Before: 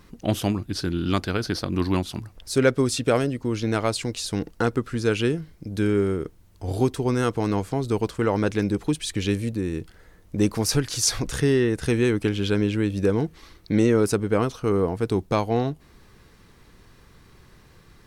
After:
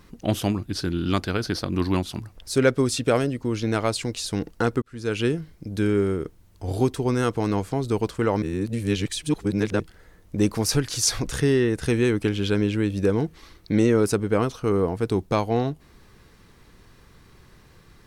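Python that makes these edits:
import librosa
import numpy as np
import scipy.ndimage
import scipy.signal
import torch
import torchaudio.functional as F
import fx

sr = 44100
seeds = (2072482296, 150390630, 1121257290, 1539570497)

y = fx.edit(x, sr, fx.fade_in_span(start_s=4.82, length_s=0.44),
    fx.reverse_span(start_s=8.42, length_s=1.38), tone=tone)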